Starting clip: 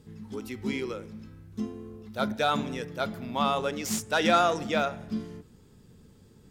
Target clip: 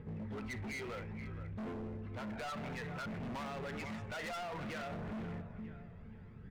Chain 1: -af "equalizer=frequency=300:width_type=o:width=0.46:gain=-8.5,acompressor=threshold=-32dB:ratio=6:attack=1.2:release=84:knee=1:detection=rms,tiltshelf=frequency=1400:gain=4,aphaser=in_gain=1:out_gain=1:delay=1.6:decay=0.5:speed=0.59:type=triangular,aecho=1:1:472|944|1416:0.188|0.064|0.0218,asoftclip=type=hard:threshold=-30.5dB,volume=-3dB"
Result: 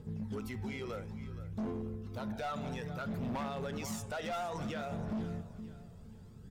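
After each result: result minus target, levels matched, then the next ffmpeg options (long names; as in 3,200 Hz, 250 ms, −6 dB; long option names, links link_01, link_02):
2,000 Hz band −5.0 dB; hard clipping: distortion −6 dB
-af "equalizer=frequency=300:width_type=o:width=0.46:gain=-8.5,acompressor=threshold=-32dB:ratio=6:attack=1.2:release=84:knee=1:detection=rms,lowpass=frequency=2100:width_type=q:width=3.1,tiltshelf=frequency=1400:gain=4,aphaser=in_gain=1:out_gain=1:delay=1.6:decay=0.5:speed=0.59:type=triangular,aecho=1:1:472|944|1416:0.188|0.064|0.0218,asoftclip=type=hard:threshold=-30.5dB,volume=-3dB"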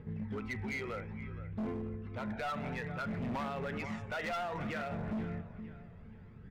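hard clipping: distortion −5 dB
-af "equalizer=frequency=300:width_type=o:width=0.46:gain=-8.5,acompressor=threshold=-32dB:ratio=6:attack=1.2:release=84:knee=1:detection=rms,lowpass=frequency=2100:width_type=q:width=3.1,tiltshelf=frequency=1400:gain=4,aphaser=in_gain=1:out_gain=1:delay=1.6:decay=0.5:speed=0.59:type=triangular,aecho=1:1:472|944|1416:0.188|0.064|0.0218,asoftclip=type=hard:threshold=-37dB,volume=-3dB"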